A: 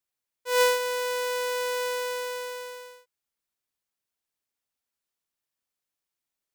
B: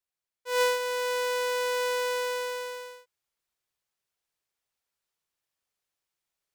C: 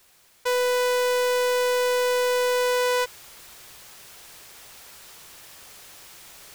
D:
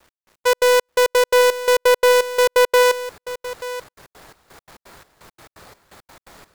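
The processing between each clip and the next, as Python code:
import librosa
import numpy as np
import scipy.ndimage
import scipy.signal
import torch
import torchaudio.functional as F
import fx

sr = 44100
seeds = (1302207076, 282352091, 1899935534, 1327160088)

y1 = fx.high_shelf(x, sr, hz=9200.0, db=-5.5)
y1 = fx.rider(y1, sr, range_db=3, speed_s=0.5)
y1 = fx.peak_eq(y1, sr, hz=250.0, db=-10.0, octaves=0.38)
y2 = fx.rider(y1, sr, range_db=4, speed_s=0.5)
y2 = fx.leveller(y2, sr, passes=2)
y2 = fx.env_flatten(y2, sr, amount_pct=100)
y3 = scipy.signal.medfilt(y2, 15)
y3 = fx.step_gate(y3, sr, bpm=170, pattern='x..x.x.x', floor_db=-60.0, edge_ms=4.5)
y3 = y3 + 10.0 ** (-14.0 / 20.0) * np.pad(y3, (int(883 * sr / 1000.0), 0))[:len(y3)]
y3 = y3 * 10.0 ** (9.0 / 20.0)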